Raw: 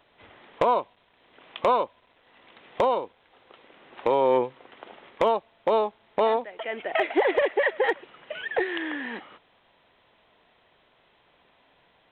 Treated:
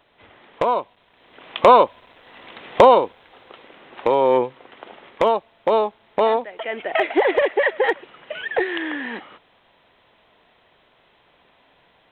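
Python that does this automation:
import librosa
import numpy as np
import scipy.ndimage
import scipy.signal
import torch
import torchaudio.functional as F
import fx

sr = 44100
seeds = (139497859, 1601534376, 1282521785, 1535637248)

y = fx.gain(x, sr, db=fx.line((0.73, 2.0), (1.83, 12.0), (3.02, 12.0), (4.12, 4.5)))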